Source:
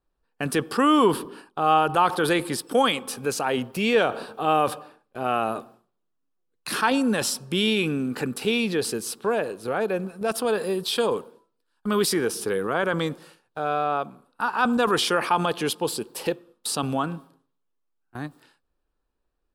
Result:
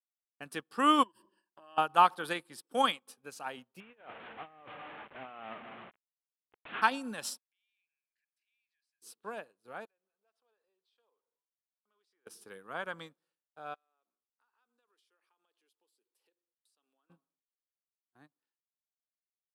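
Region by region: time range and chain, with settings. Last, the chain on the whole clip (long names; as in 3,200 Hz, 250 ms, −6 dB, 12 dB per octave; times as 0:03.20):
0:01.03–0:01.78: EQ curve with evenly spaced ripples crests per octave 1.3, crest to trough 16 dB + downward compressor 8 to 1, threshold −28 dBFS
0:03.80–0:06.82: linear delta modulator 16 kbit/s, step −23.5 dBFS + compressor whose output falls as the input rises −27 dBFS
0:07.38–0:09.02: Chebyshev high-pass with heavy ripple 1,600 Hz, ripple 6 dB + spectral tilt −4.5 dB per octave + downward compressor 2 to 1, threshold −50 dBFS
0:09.85–0:12.27: band-pass filter 500–5,100 Hz + downward compressor 2 to 1, threshold −52 dBFS
0:13.74–0:17.10: high-pass filter 330 Hz 24 dB per octave + parametric band 710 Hz −7.5 dB 1.9 octaves + downward compressor 5 to 1, threshold −40 dBFS
whole clip: high-pass filter 260 Hz 6 dB per octave; dynamic equaliser 410 Hz, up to −7 dB, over −38 dBFS, Q 1.6; expander for the loud parts 2.5 to 1, over −43 dBFS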